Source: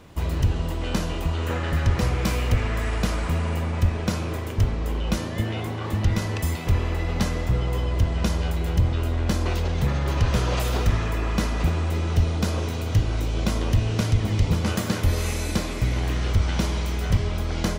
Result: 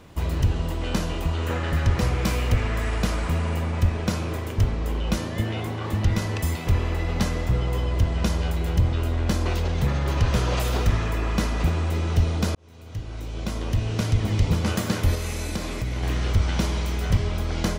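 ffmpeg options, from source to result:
-filter_complex "[0:a]asettb=1/sr,asplit=3[a][b][c];[a]atrim=end=15.154[d];[b]atrim=start=15.15:end=16.03,asetpts=PTS-STARTPTS,afade=t=in:d=0.004:c=qsin,afade=t=out:st=0.876:d=0.004:c=qsin,acompressor=threshold=-25dB:ratio=2.5:attack=3.2:release=140:knee=1:detection=peak[e];[c]atrim=start=16.026[f];[d][e]acrossfade=d=0.004:c1=hsin:c2=qsin[g];[g][f]acrossfade=d=0.004:c1=qsin:c2=hsin,asplit=2[h][i];[h]atrim=end=12.55,asetpts=PTS-STARTPTS,afade=t=out:st=12.546:d=0.004:c=hsin[j];[i]atrim=start=12.55,asetpts=PTS-STARTPTS,afade=t=in:d=1.73[k];[j][k]concat=n=2:v=0:a=1"

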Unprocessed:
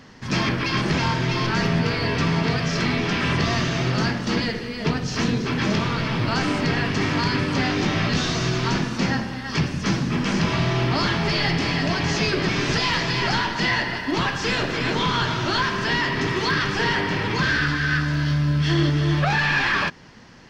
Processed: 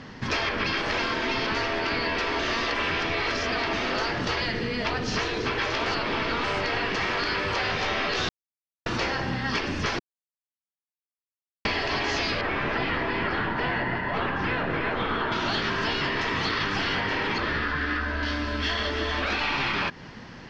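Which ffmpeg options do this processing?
-filter_complex "[0:a]asettb=1/sr,asplit=3[a][b][c];[a]atrim=end=12.414[d];[b]atrim=start=12.41:end=15.32,asetpts=PTS-STARTPTS,afade=t=in:d=0.004:c=qsin,afade=t=out:st=2.906:d=0.004:c=qsin,lowpass=1.9k[e];[c]atrim=start=15.316[f];[d][e]acrossfade=d=0.004:c1=hsin:c2=qsin[g];[g][f]acrossfade=d=0.004:c1=qsin:c2=hsin,asettb=1/sr,asplit=3[h][i][j];[h]atrim=end=17.384[k];[i]atrim=start=17.38:end=18.23,asetpts=PTS-STARTPTS,afade=t=in:d=0.004:c=qsin,afade=t=out:st=0.846:d=0.004:c=qsin,lowpass=f=1.7k:p=1[l];[j]atrim=start=18.226[m];[k][l]acrossfade=d=0.004:c1=hsin:c2=qsin[n];[n][m]acrossfade=d=0.004:c1=qsin:c2=hsin,asplit=9[o][p][q][r][s][t][u][v][w];[o]atrim=end=2.392[x];[p]atrim=start=2.388:end=3.732,asetpts=PTS-STARTPTS,areverse[y];[q]atrim=start=3.728:end=5.862[z];[r]atrim=start=5.858:end=6.442,asetpts=PTS-STARTPTS,areverse[aa];[s]atrim=start=6.438:end=8.29,asetpts=PTS-STARTPTS,afade=t=out:st=1.848:d=0.004:c=hsin[ab];[t]atrim=start=8.29:end=8.86,asetpts=PTS-STARTPTS,volume=0[ac];[u]atrim=start=8.86:end=9.99,asetpts=PTS-STARTPTS,afade=t=in:d=0.004:c=hsin,afade=t=out:st=1.126:d=0.004:c=hsin[ad];[v]atrim=start=9.99:end=11.65,asetpts=PTS-STARTPTS,volume=0[ae];[w]atrim=start=11.65,asetpts=PTS-STARTPTS,afade=t=in:d=0.004:c=hsin[af];[x][y]acrossfade=d=0.004:c1=hsin:c2=hsin[ag];[ag][z]acrossfade=d=0.004:c1=hsin:c2=hsin[ah];[ah][aa]acrossfade=d=0.004:c1=hsin:c2=hsin[ai];[ab][ac][ad][ae][af]concat=n=5:v=0:a=1[aj];[ai][aj]acrossfade=d=0.004:c1=hsin:c2=hsin,lowpass=4.6k,afftfilt=real='re*lt(hypot(re,im),0.282)':imag='im*lt(hypot(re,im),0.282)':win_size=1024:overlap=0.75,acompressor=threshold=-28dB:ratio=6,volume=4.5dB"

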